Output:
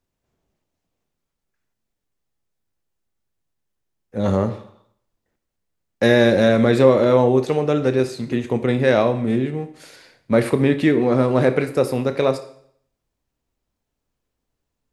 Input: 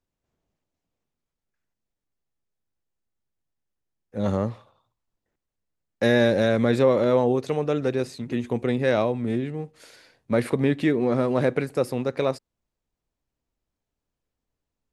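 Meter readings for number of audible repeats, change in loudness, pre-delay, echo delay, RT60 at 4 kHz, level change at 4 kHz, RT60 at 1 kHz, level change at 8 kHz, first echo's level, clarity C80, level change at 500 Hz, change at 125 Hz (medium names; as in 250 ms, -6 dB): no echo, +5.5 dB, 23 ms, no echo, 0.60 s, +5.5 dB, 0.65 s, no reading, no echo, 16.0 dB, +5.5 dB, +5.5 dB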